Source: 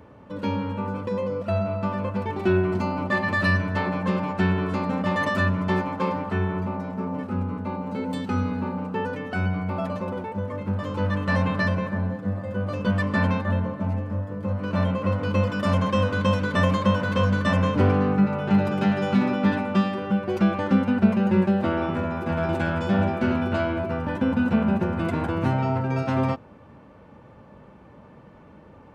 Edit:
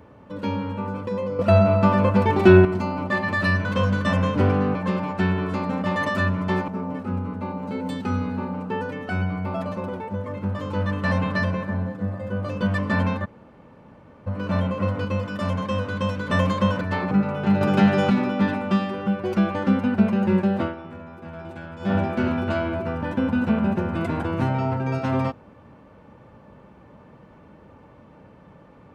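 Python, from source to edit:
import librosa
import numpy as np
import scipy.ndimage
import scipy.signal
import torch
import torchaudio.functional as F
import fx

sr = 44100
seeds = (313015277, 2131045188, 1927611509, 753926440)

y = fx.edit(x, sr, fx.clip_gain(start_s=1.39, length_s=1.26, db=9.0),
    fx.swap(start_s=3.65, length_s=0.3, other_s=17.05, other_length_s=1.1),
    fx.cut(start_s=5.88, length_s=1.04),
    fx.room_tone_fill(start_s=13.49, length_s=1.02, crossfade_s=0.02),
    fx.clip_gain(start_s=15.29, length_s=1.23, db=-3.5),
    fx.clip_gain(start_s=18.65, length_s=0.49, db=5.0),
    fx.fade_down_up(start_s=21.66, length_s=1.3, db=-12.5, fade_s=0.13), tone=tone)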